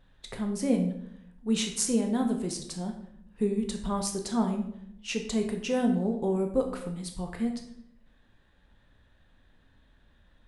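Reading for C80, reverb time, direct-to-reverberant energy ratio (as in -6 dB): 11.0 dB, 0.75 s, 3.5 dB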